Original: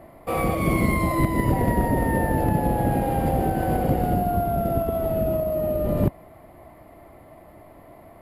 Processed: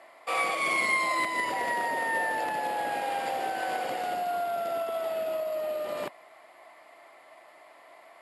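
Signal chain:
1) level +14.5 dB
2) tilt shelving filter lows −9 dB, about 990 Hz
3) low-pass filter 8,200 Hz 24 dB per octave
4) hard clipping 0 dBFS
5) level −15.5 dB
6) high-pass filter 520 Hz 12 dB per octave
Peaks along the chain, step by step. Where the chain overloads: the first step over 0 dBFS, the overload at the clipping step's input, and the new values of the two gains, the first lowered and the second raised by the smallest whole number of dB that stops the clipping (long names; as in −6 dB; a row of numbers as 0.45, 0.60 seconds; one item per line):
+3.5, +4.5, +3.0, 0.0, −15.5, −14.5 dBFS
step 1, 3.0 dB
step 1 +11.5 dB, step 5 −12.5 dB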